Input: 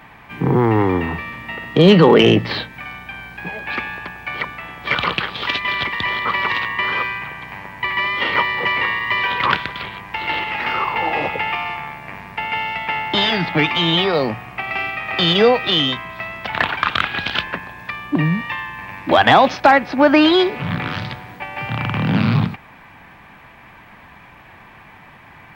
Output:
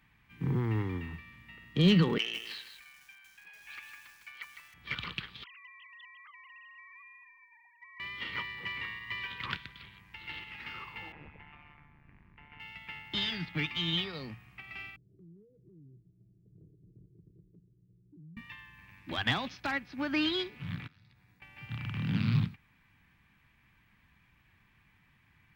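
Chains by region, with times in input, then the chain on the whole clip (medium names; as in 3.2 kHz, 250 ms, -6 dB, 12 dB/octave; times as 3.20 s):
2.18–4.74 s: high-pass 850 Hz + band-stop 3.6 kHz, Q 29 + bit-crushed delay 156 ms, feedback 35%, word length 6-bit, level -4.5 dB
5.44–8.00 s: formants replaced by sine waves + compression 3:1, threshold -28 dBFS
11.12–12.60 s: low-pass 1.7 kHz + bass shelf 350 Hz +4.5 dB + AM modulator 150 Hz, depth 85%
14.96–18.37 s: steep low-pass 560 Hz 96 dB/octave + static phaser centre 360 Hz, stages 8 + compression 5:1, threshold -31 dBFS
20.87–21.42 s: band-stop 3.1 kHz, Q 7.6 + expander -35 dBFS + compression 16:1, threshold -38 dBFS
whole clip: amplifier tone stack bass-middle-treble 6-0-2; upward expansion 1.5:1, over -46 dBFS; trim +6.5 dB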